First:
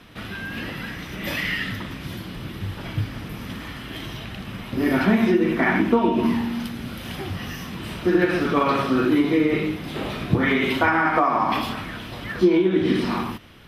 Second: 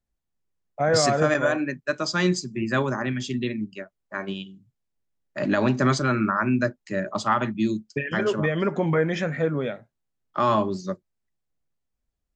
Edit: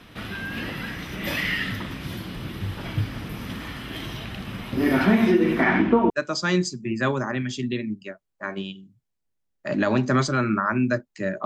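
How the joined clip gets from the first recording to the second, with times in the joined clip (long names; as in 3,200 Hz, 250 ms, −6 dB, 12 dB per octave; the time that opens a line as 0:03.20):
first
0:05.62–0:06.10: low-pass filter 7,900 Hz → 1,200 Hz
0:06.10: continue with second from 0:01.81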